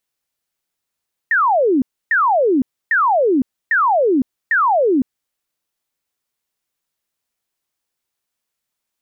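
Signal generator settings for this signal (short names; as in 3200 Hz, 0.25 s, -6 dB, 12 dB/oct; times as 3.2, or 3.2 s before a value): burst of laser zaps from 1900 Hz, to 240 Hz, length 0.51 s sine, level -11.5 dB, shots 5, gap 0.29 s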